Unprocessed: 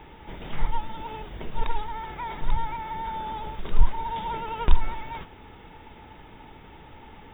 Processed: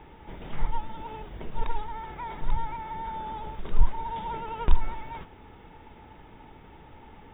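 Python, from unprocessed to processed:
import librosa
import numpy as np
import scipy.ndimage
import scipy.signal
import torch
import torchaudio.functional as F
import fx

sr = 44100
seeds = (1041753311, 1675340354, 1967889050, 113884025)

y = fx.high_shelf(x, sr, hz=2500.0, db=-7.0)
y = y * librosa.db_to_amplitude(-2.0)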